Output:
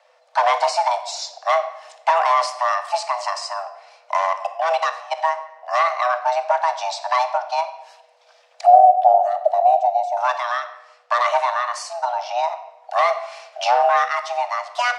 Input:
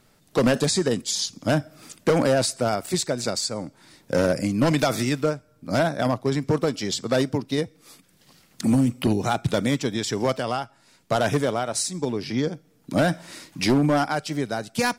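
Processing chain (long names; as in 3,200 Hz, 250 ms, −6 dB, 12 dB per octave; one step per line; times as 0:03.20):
0:04.17–0:05.17: output level in coarse steps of 22 dB
0:08.66–0:10.17: drawn EQ curve 120 Hz 0 dB, 240 Hz +11 dB, 540 Hz −17 dB, 4,100 Hz −19 dB, 11,000 Hz −9 dB
frequency shifter +490 Hz
high-frequency loss of the air 130 metres
convolution reverb RT60 0.90 s, pre-delay 3 ms, DRR 7.5 dB
level +3 dB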